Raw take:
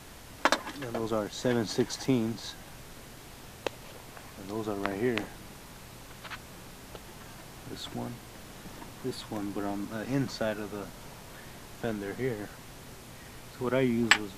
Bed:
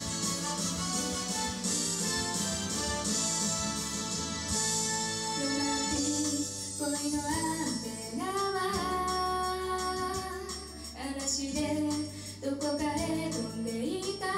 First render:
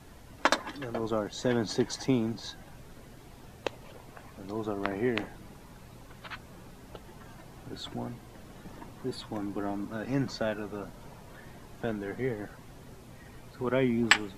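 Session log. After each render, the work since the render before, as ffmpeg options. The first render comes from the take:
-af "afftdn=nr=9:nf=-48"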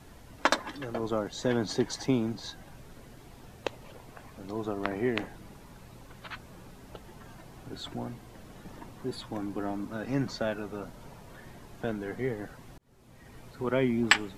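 -filter_complex "[0:a]asplit=2[a][b];[a]atrim=end=12.78,asetpts=PTS-STARTPTS,afade=t=out:st=12.776:d=0.004:c=hsin[c];[b]atrim=start=12.78,asetpts=PTS-STARTPTS,afade=t=in:d=0.63[d];[c][d]concat=n=2:v=0:a=1"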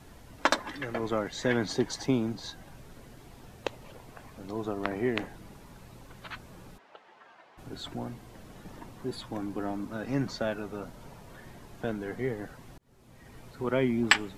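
-filter_complex "[0:a]asettb=1/sr,asplit=3[a][b][c];[a]atrim=end=0.714[d];[b]atrim=start=0.71:end=1.69,asetpts=PTS-STARTPTS,afade=t=in:d=0.004:c=qsin,afade=t=out:st=0.976:d=0.004:c=qsin,equalizer=f=2k:t=o:w=0.69:g=10.5[e];[c]atrim=start=1.686[f];[d][e]acrossfade=d=0.004:c1=hsin:c2=qsin[g];[g][f]acrossfade=d=0.004:c1=qsin:c2=hsin,asplit=3[h][i][j];[h]afade=t=out:st=6.77:d=0.02[k];[i]highpass=670,lowpass=2.9k,afade=t=in:st=6.77:d=0.02,afade=t=out:st=7.57:d=0.02[l];[j]afade=t=in:st=7.57:d=0.02[m];[k][l][m]amix=inputs=3:normalize=0"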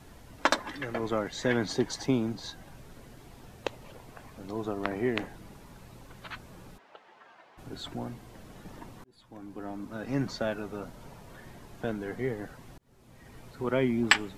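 -filter_complex "[0:a]asplit=2[a][b];[a]atrim=end=9.04,asetpts=PTS-STARTPTS,afade=t=out:st=9.036:d=0.004:c=hsin[c];[b]atrim=start=9.04,asetpts=PTS-STARTPTS,afade=t=in:d=1.17[d];[c][d]concat=n=2:v=0:a=1"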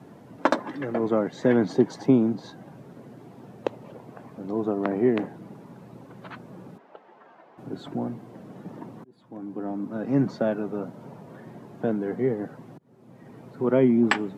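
-af "highpass=f=140:w=0.5412,highpass=f=140:w=1.3066,tiltshelf=f=1.4k:g=9.5"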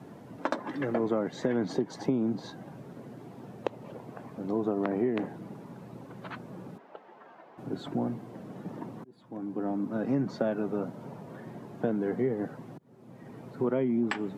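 -af "alimiter=limit=-12.5dB:level=0:latency=1:release=253,acompressor=threshold=-24dB:ratio=6"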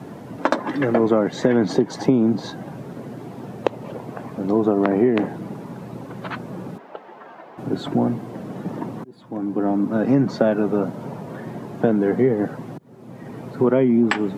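-af "volume=11dB"

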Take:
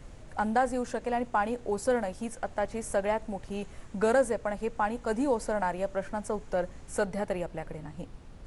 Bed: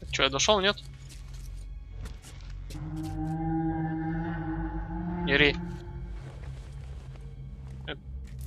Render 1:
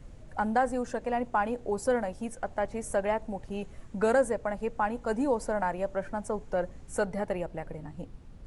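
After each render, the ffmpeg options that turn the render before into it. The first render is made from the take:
-af "afftdn=nr=6:nf=-48"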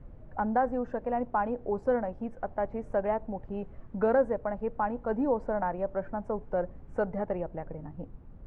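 -af "lowpass=1.3k"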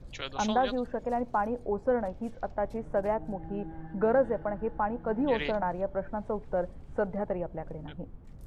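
-filter_complex "[1:a]volume=-13.5dB[a];[0:a][a]amix=inputs=2:normalize=0"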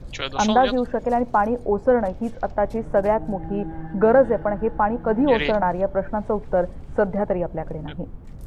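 -af "volume=9.5dB"

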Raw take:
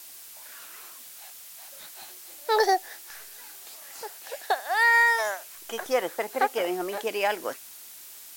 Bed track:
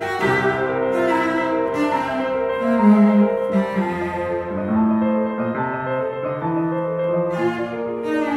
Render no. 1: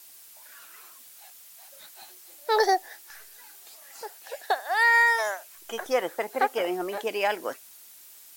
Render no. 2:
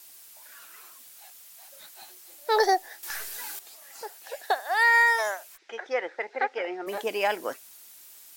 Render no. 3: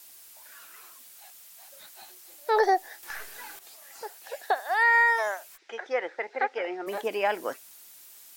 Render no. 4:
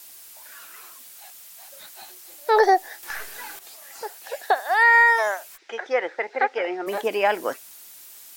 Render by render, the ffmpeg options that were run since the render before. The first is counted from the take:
-af "afftdn=nr=6:nf=-46"
-filter_complex "[0:a]asplit=3[a][b][c];[a]afade=t=out:st=5.56:d=0.02[d];[b]highpass=450,equalizer=f=650:t=q:w=4:g=-6,equalizer=f=1.1k:t=q:w=4:g=-10,equalizer=f=2k:t=q:w=4:g=4,equalizer=f=3.1k:t=q:w=4:g=-7,equalizer=f=4.3k:t=q:w=4:g=-4,lowpass=f=4.5k:w=0.5412,lowpass=f=4.5k:w=1.3066,afade=t=in:st=5.56:d=0.02,afade=t=out:st=6.86:d=0.02[e];[c]afade=t=in:st=6.86:d=0.02[f];[d][e][f]amix=inputs=3:normalize=0,asplit=3[g][h][i];[g]atrim=end=3.032[j];[h]atrim=start=3.028:end=3.592,asetpts=PTS-STARTPTS,volume=11.5dB[k];[i]atrim=start=3.588[l];[j][k]acrossfade=d=0.004:c1=hsin:c2=hsin[m];[m][l]acrossfade=d=0.004:c1=hsin:c2=hsin"
-filter_complex "[0:a]acrossover=split=2700[a][b];[b]acompressor=threshold=-43dB:ratio=4:attack=1:release=60[c];[a][c]amix=inputs=2:normalize=0"
-af "volume=5.5dB"

